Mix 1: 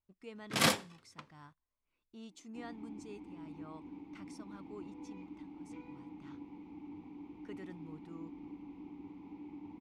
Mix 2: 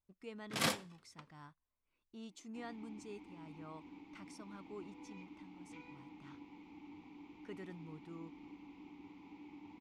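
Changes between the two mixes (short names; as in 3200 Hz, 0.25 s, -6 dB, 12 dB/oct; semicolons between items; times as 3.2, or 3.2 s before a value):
first sound -6.0 dB; second sound: add tilt shelf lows -7 dB, about 1100 Hz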